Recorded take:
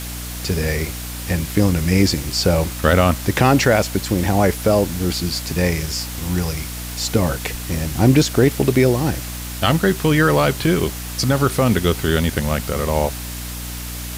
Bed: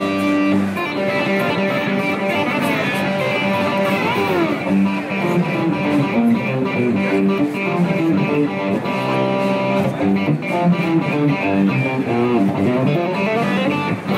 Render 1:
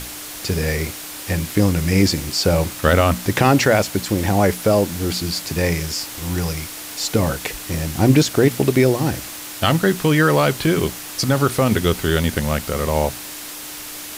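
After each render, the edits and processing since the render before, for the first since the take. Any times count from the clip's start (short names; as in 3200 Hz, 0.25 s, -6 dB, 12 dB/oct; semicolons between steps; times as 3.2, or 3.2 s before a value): notches 60/120/180/240 Hz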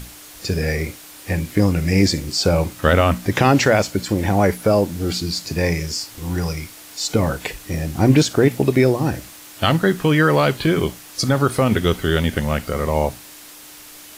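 noise print and reduce 8 dB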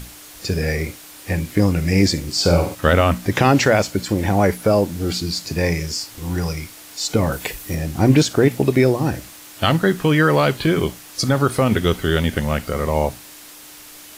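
2.31–2.75 flutter echo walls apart 8 m, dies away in 0.42 s; 7.32–7.75 high shelf 11000 Hz +11 dB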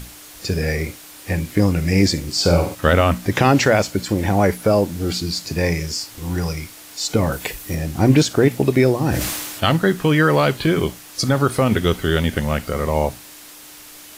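8.96–9.64 sustainer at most 33 dB/s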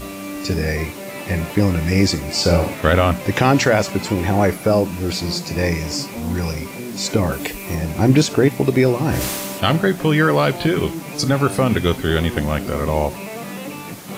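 add bed -13 dB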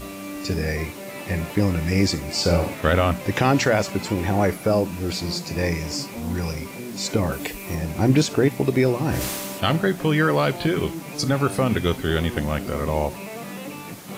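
gain -4 dB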